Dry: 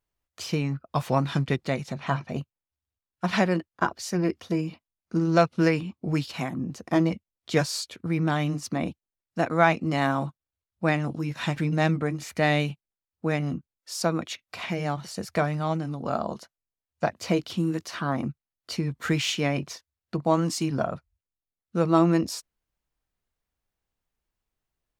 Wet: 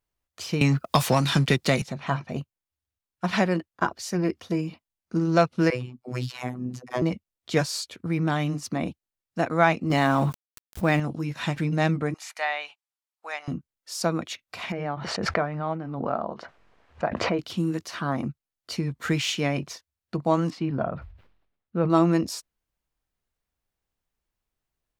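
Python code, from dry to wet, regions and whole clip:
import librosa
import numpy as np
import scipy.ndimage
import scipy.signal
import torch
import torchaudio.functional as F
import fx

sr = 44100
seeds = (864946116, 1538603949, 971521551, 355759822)

y = fx.chain(x, sr, fx.high_shelf(hz=2900.0, db=12.0),
    fx.leveller(passes=1),
    fx.band_squash(depth_pct=100), at=(0.61, 1.82))
y = fx.chain(y, sr, fx.dispersion(late='lows', ms=63.0, hz=370.0),
    fx.robotise(hz=125.0), at=(5.7, 7.02))
y = fx.chain(y, sr, fx.law_mismatch(coded='mu'),
    fx.env_flatten(amount_pct=70), at=(9.9, 11.0))
y = fx.chain(y, sr, fx.cheby1_highpass(hz=780.0, order=3),
    fx.env_lowpass_down(base_hz=2700.0, full_db=-23.5), at=(12.14, 13.48))
y = fx.chain(y, sr, fx.lowpass(hz=1800.0, slope=12),
    fx.low_shelf(hz=230.0, db=-8.5),
    fx.pre_swell(db_per_s=32.0), at=(14.72, 17.39))
y = fx.chain(y, sr, fx.air_absorb(metres=380.0),
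    fx.sustainer(db_per_s=76.0), at=(20.5, 21.9))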